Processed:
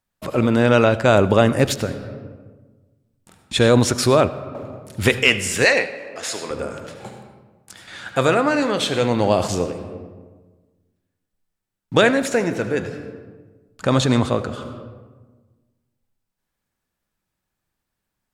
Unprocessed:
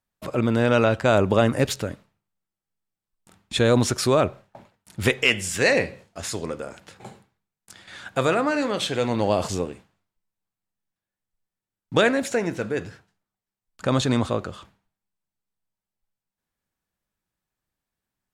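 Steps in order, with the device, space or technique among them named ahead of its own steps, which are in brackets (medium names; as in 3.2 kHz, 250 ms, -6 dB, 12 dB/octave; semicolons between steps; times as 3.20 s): compressed reverb return (on a send at -4.5 dB: reverberation RT60 1.3 s, pre-delay 66 ms + compression 12:1, threshold -26 dBFS, peak gain reduction 13.5 dB); 5.65–6.51 s: on the sum: frequency weighting A; trim +4 dB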